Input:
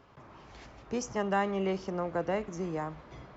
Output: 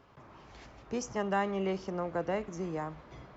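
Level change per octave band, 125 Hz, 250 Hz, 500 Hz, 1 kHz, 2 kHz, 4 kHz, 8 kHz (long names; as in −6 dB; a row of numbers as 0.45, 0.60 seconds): −1.5 dB, −1.5 dB, −1.5 dB, −1.5 dB, −1.5 dB, −1.5 dB, can't be measured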